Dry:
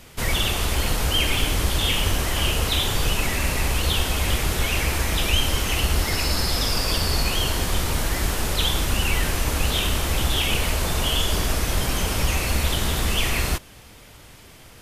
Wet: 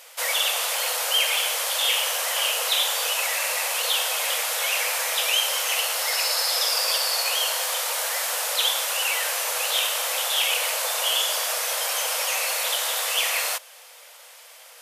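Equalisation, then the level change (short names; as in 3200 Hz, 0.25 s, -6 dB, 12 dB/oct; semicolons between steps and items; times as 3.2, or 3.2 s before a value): brick-wall FIR high-pass 460 Hz; high shelf 5100 Hz +5.5 dB; 0.0 dB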